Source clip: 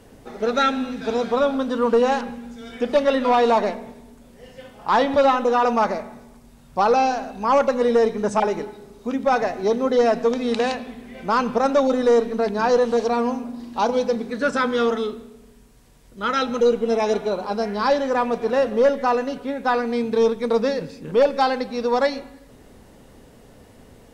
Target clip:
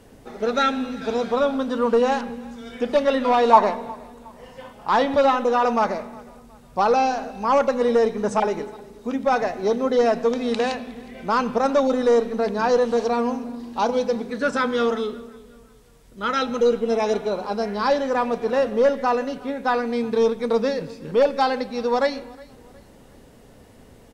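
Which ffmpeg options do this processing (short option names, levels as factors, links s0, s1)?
-filter_complex "[0:a]asettb=1/sr,asplit=3[s0][s1][s2];[s0]atrim=end=3.534[s3];[s1]atrim=start=3.53:end=4.73,asetpts=PTS-STARTPTS,afade=t=in:d=0.004:c=qsin,afade=t=out:st=1.196:d=0.004:c=qsin,equalizer=f=1000:t=o:w=0.66:g=12.5[s4];[s2]atrim=start=4.726[s5];[s3][s4]acrossfade=d=0.004:c1=hsin:c2=qsin[s6];[s6][s5]acrossfade=d=0.004:c1=qsin:c2=hsin,asplit=2[s7][s8];[s8]aecho=0:1:363|726|1089:0.0668|0.0261|0.0102[s9];[s7][s9]amix=inputs=2:normalize=0,volume=0.891"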